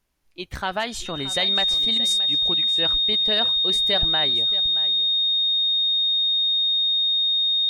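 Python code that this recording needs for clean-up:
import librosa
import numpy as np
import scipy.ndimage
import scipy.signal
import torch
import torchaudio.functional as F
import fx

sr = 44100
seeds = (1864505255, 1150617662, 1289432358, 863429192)

y = fx.notch(x, sr, hz=3700.0, q=30.0)
y = fx.fix_echo_inverse(y, sr, delay_ms=624, level_db=-16.0)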